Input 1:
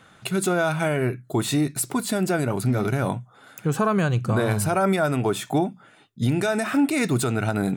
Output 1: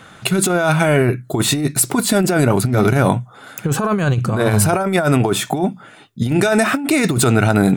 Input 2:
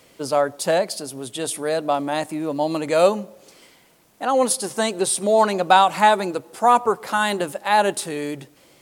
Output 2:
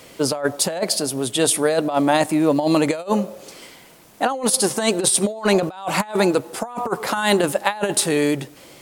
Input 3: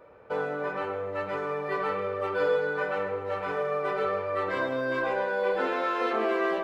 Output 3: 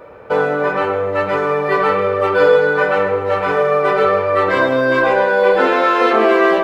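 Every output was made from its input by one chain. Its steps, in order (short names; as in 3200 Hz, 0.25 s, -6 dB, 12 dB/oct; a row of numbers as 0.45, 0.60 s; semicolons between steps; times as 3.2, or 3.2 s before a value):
negative-ratio compressor -23 dBFS, ratio -0.5; normalise peaks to -1.5 dBFS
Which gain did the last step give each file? +9.0, +4.5, +14.5 dB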